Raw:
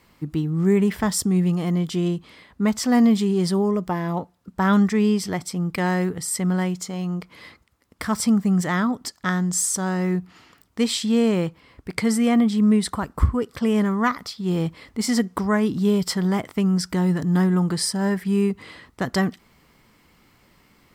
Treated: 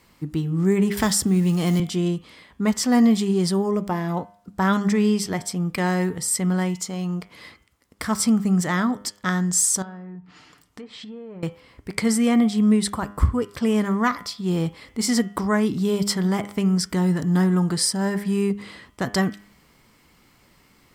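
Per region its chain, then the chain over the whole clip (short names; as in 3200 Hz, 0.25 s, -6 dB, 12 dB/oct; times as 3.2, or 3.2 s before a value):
0.97–1.8 G.711 law mismatch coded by mu + three-band squash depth 70%
9.82–11.43 treble ducked by the level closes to 1400 Hz, closed at -18.5 dBFS + comb 6.7 ms, depth 39% + compressor 5:1, threshold -37 dBFS
whole clip: bell 8100 Hz +3.5 dB 1.6 oct; de-hum 101.5 Hz, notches 34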